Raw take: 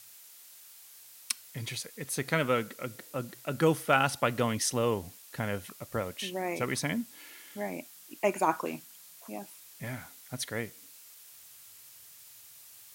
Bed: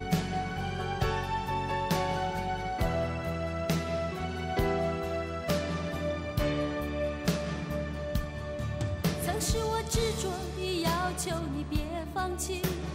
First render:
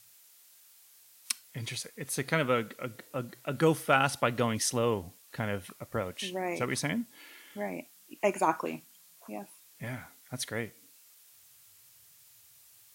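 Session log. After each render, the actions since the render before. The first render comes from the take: noise print and reduce 6 dB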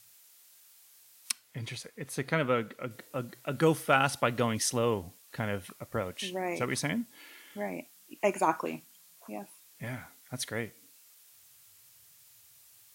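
1.31–2.91 s: treble shelf 3.9 kHz -8 dB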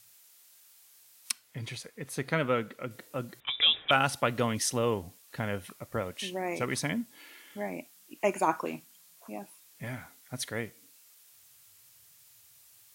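3.40–3.91 s: frequency inversion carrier 3.7 kHz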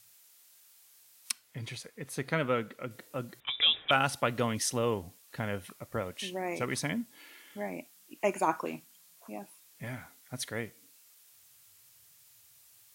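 trim -1.5 dB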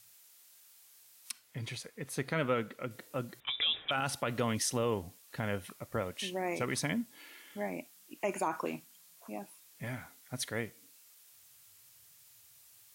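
peak limiter -21.5 dBFS, peak gain reduction 10 dB

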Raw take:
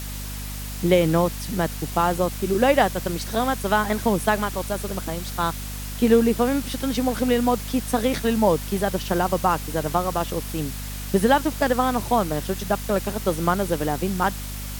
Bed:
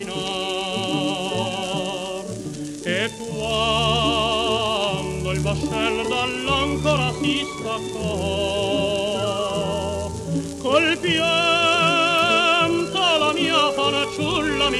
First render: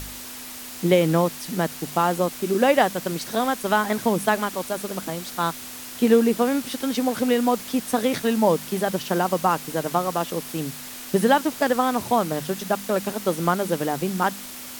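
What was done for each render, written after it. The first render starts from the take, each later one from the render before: de-hum 50 Hz, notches 4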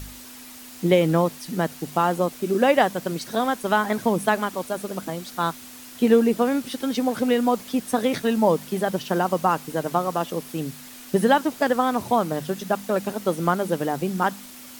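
noise reduction 6 dB, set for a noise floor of -37 dBFS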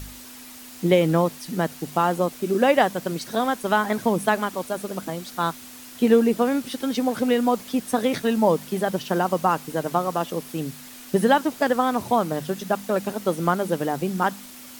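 no audible change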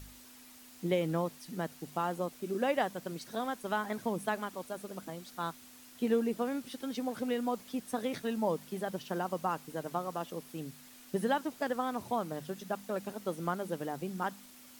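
trim -12.5 dB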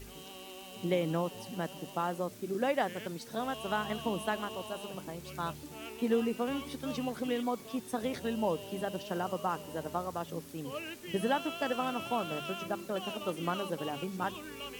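add bed -23.5 dB

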